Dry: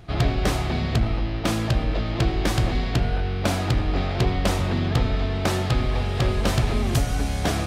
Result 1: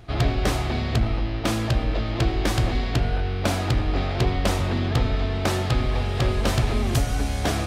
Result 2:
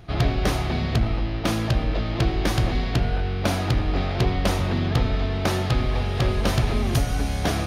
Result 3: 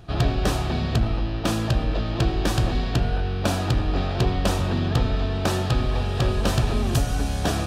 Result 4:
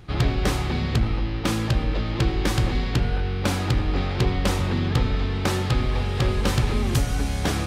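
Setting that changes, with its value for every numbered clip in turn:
notch filter, centre frequency: 170, 7,700, 2,100, 670 Hertz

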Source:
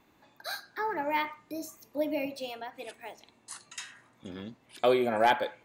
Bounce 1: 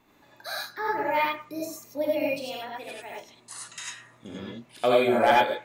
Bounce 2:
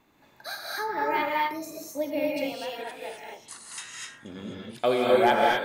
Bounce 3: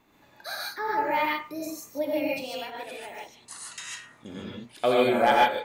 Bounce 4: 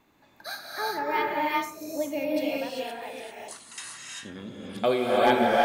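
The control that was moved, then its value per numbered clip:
reverb whose tail is shaped and stops, gate: 120, 280, 170, 420 milliseconds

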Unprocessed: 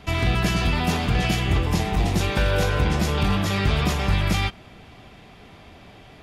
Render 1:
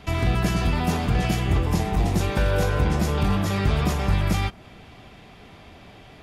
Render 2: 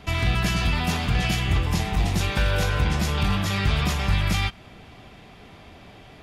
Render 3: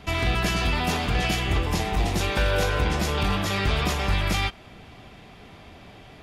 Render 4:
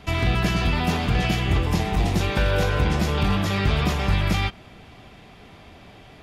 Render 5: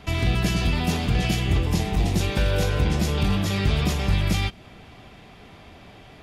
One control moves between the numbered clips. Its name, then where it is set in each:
dynamic equaliser, frequency: 3,200, 400, 140, 9,200, 1,200 Hertz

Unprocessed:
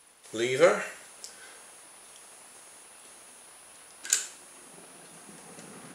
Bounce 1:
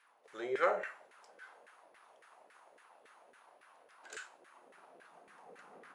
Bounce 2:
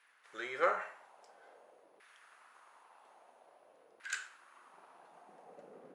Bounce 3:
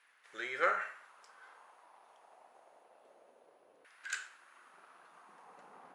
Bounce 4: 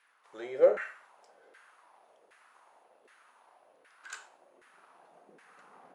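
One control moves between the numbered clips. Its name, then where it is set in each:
auto-filter band-pass, speed: 3.6, 0.5, 0.26, 1.3 Hertz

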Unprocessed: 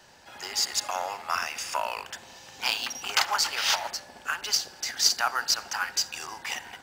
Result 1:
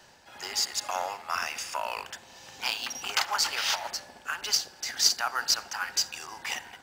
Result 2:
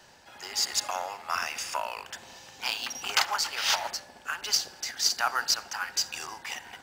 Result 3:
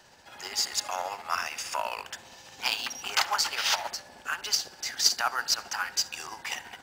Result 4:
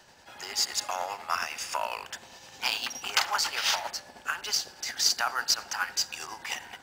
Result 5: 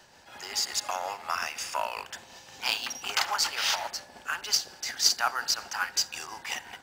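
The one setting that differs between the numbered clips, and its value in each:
amplitude tremolo, speed: 2, 1.3, 15, 9.8, 5.5 Hertz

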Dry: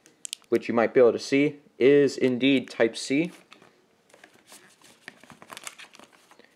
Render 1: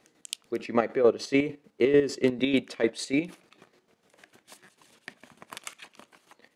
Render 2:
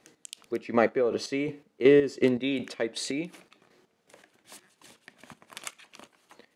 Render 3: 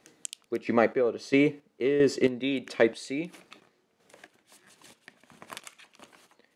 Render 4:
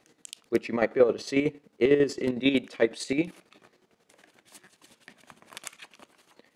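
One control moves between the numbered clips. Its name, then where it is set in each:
square-wave tremolo, speed: 6.7, 2.7, 1.5, 11 Hertz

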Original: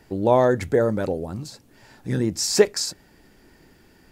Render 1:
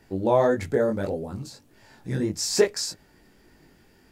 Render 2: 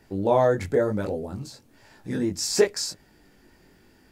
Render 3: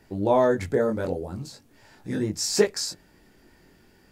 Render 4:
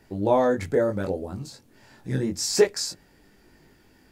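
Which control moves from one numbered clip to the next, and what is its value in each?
chorus effect, speed: 1.7, 0.98, 0.44, 0.25 Hertz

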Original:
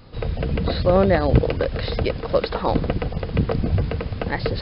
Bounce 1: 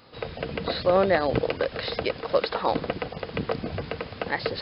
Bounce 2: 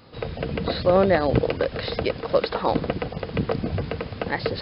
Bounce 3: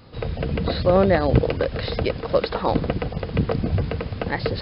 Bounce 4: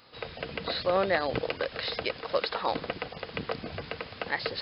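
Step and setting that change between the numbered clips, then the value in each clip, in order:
high-pass filter, corner frequency: 540, 210, 65, 1,400 Hertz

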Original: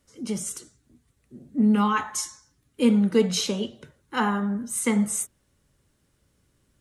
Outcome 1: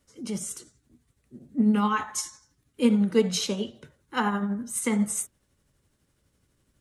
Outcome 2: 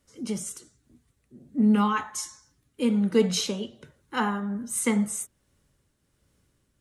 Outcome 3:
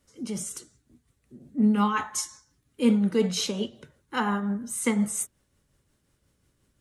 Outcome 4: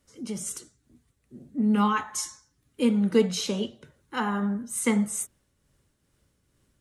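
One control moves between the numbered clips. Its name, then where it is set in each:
shaped tremolo, speed: 12, 1.3, 5.6, 2.3 Hertz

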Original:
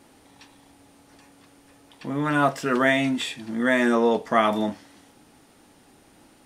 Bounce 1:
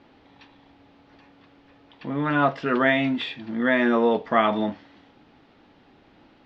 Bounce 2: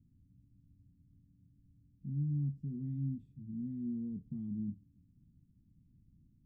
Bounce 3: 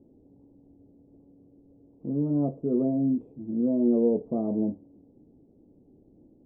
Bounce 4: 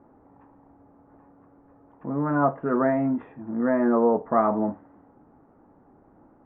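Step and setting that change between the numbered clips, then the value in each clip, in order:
inverse Chebyshev low-pass filter, stop band from: 11,000, 560, 1,600, 4,100 Hertz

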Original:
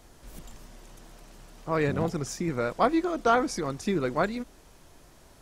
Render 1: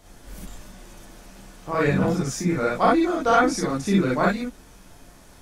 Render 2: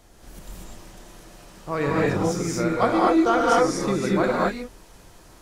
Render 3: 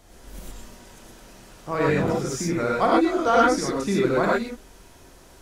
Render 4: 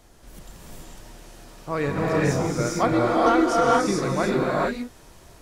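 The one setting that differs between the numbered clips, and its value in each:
reverb whose tail is shaped and stops, gate: 80, 270, 140, 470 milliseconds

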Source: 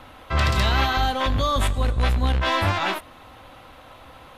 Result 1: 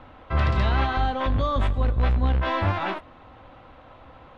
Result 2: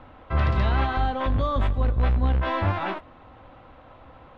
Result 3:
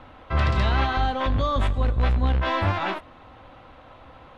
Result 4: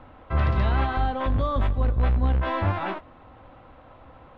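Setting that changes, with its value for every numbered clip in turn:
head-to-tape spacing loss, at 10 kHz: 29, 38, 21, 46 decibels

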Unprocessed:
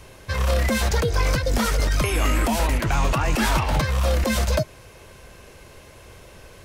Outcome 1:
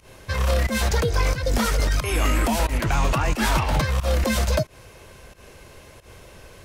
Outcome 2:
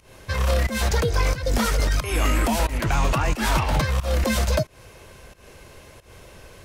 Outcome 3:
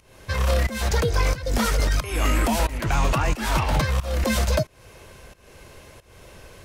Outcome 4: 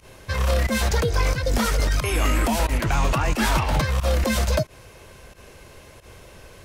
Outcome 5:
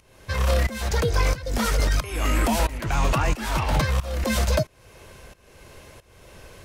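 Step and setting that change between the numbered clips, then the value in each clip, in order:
fake sidechain pumping, release: 129, 203, 345, 86, 532 milliseconds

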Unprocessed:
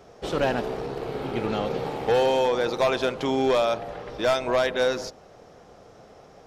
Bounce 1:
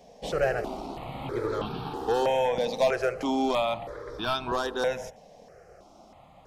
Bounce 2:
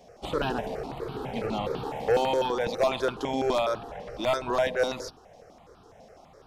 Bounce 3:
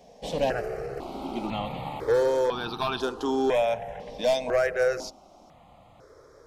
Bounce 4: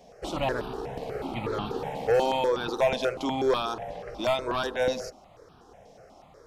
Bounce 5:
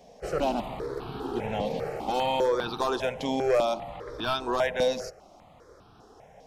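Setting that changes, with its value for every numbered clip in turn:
step-sequenced phaser, speed: 3.1, 12, 2, 8.2, 5 Hertz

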